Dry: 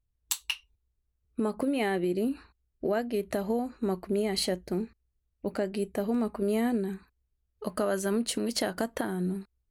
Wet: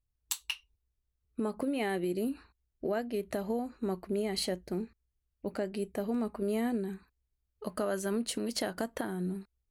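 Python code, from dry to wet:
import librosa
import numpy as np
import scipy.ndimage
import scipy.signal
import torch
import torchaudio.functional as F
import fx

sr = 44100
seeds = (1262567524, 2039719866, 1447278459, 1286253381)

y = fx.high_shelf(x, sr, hz=5900.0, db=7.0, at=(1.89, 2.31))
y = y * librosa.db_to_amplitude(-4.0)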